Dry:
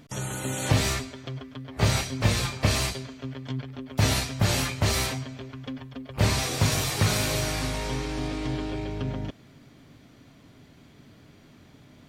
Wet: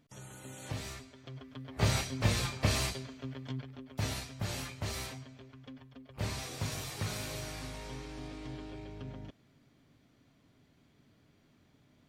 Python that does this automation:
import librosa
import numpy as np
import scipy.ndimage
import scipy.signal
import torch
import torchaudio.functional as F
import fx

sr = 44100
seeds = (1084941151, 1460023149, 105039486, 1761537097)

y = fx.gain(x, sr, db=fx.line((0.97, -17.0), (1.61, -6.0), (3.44, -6.0), (4.16, -13.5)))